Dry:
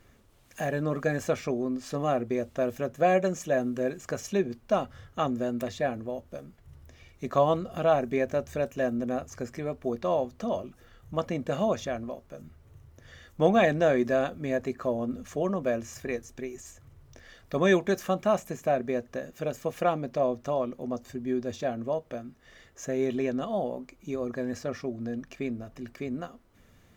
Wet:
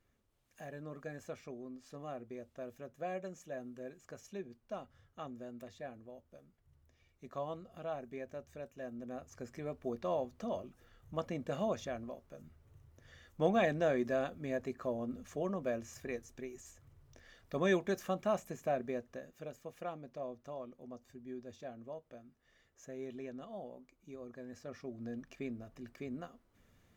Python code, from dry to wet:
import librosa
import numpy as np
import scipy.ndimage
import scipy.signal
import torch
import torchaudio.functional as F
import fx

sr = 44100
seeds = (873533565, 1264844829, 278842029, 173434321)

y = fx.gain(x, sr, db=fx.line((8.8, -17.5), (9.67, -8.5), (18.85, -8.5), (19.65, -16.5), (24.48, -16.5), (25.07, -9.0)))